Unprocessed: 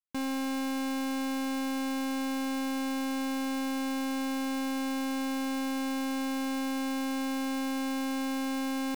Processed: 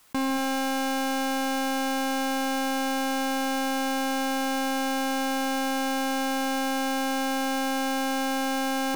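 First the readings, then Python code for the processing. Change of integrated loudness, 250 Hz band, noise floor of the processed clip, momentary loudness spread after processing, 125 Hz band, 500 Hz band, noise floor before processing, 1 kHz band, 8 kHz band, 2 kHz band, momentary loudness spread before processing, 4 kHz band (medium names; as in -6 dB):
+5.0 dB, +2.0 dB, -27 dBFS, 0 LU, no reading, +8.5 dB, -32 dBFS, +10.0 dB, +8.0 dB, +8.5 dB, 0 LU, +8.0 dB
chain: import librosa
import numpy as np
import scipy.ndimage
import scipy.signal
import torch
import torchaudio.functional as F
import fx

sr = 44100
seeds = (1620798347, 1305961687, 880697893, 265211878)

y = fx.peak_eq(x, sr, hz=1000.0, db=4.5, octaves=1.3)
y = y + 10.0 ** (-12.5 / 20.0) * np.pad(y, (int(156 * sr / 1000.0), 0))[:len(y)]
y = fx.rev_gated(y, sr, seeds[0], gate_ms=260, shape='rising', drr_db=10.5)
y = fx.env_flatten(y, sr, amount_pct=50)
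y = y * librosa.db_to_amplitude(5.0)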